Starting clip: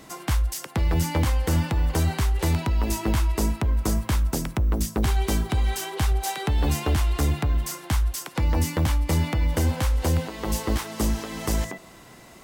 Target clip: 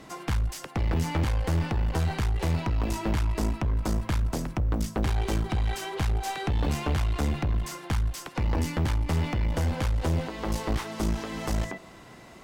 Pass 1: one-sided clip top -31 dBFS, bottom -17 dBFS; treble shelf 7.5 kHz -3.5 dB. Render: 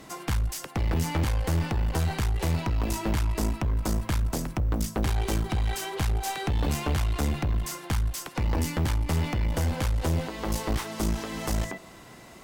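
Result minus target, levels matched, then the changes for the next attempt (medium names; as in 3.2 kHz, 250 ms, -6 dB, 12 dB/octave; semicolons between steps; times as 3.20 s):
8 kHz band +4.0 dB
change: treble shelf 7.5 kHz -12.5 dB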